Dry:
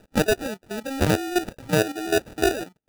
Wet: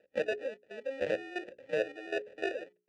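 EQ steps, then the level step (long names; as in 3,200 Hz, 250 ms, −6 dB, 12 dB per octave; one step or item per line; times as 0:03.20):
formant filter e
low-pass filter 9,100 Hz 24 dB per octave
mains-hum notches 60/120/180/240/300/360/420 Hz
0.0 dB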